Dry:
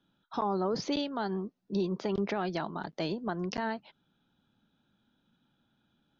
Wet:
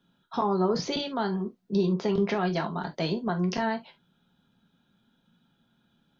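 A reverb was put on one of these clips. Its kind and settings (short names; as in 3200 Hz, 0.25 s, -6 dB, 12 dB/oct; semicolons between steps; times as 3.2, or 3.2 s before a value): non-linear reverb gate 90 ms falling, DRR 4 dB; gain +3 dB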